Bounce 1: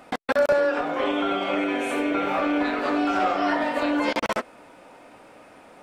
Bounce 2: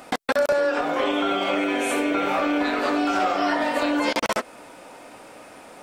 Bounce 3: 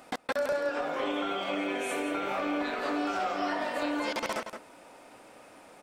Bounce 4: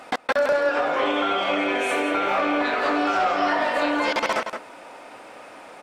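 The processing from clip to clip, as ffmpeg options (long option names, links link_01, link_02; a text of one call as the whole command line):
ffmpeg -i in.wav -af "bass=frequency=250:gain=-2,treble=frequency=4000:gain=7,acompressor=threshold=-26dB:ratio=2,volume=4.5dB" out.wav
ffmpeg -i in.wav -filter_complex "[0:a]asplit=2[link_01][link_02];[link_02]adelay=169.1,volume=-8dB,highshelf=frequency=4000:gain=-3.8[link_03];[link_01][link_03]amix=inputs=2:normalize=0,volume=-9dB" out.wav
ffmpeg -i in.wav -filter_complex "[0:a]asplit=2[link_01][link_02];[link_02]highpass=frequency=720:poles=1,volume=8dB,asoftclip=type=tanh:threshold=-19dB[link_03];[link_01][link_03]amix=inputs=2:normalize=0,lowpass=frequency=2900:poles=1,volume=-6dB,volume=8.5dB" out.wav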